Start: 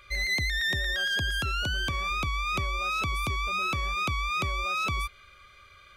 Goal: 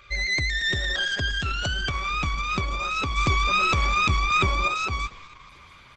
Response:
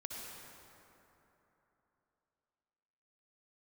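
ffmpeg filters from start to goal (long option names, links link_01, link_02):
-filter_complex "[0:a]asplit=7[link_01][link_02][link_03][link_04][link_05][link_06][link_07];[link_02]adelay=227,afreqshift=-45,volume=-20dB[link_08];[link_03]adelay=454,afreqshift=-90,volume=-23.7dB[link_09];[link_04]adelay=681,afreqshift=-135,volume=-27.5dB[link_10];[link_05]adelay=908,afreqshift=-180,volume=-31.2dB[link_11];[link_06]adelay=1135,afreqshift=-225,volume=-35dB[link_12];[link_07]adelay=1362,afreqshift=-270,volume=-38.7dB[link_13];[link_01][link_08][link_09][link_10][link_11][link_12][link_13]amix=inputs=7:normalize=0,asplit=3[link_14][link_15][link_16];[link_14]afade=type=out:start_time=3.16:duration=0.02[link_17];[link_15]acontrast=30,afade=type=in:start_time=3.16:duration=0.02,afade=type=out:start_time=4.67:duration=0.02[link_18];[link_16]afade=type=in:start_time=4.67:duration=0.02[link_19];[link_17][link_18][link_19]amix=inputs=3:normalize=0,volume=3dB" -ar 48000 -c:a libopus -b:a 12k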